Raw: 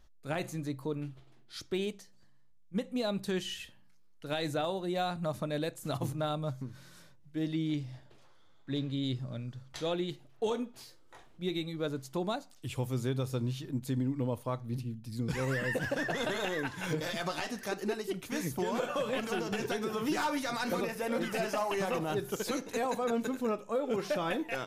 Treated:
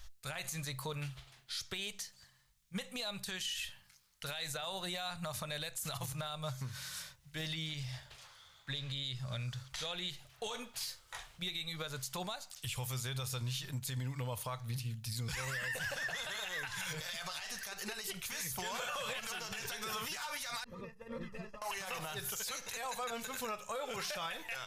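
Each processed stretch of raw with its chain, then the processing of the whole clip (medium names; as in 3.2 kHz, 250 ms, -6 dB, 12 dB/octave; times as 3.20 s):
20.64–21.62 s: boxcar filter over 59 samples + expander -36 dBFS
whole clip: amplifier tone stack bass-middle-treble 10-0-10; compression 6:1, threshold -49 dBFS; peak limiter -45.5 dBFS; trim +15.5 dB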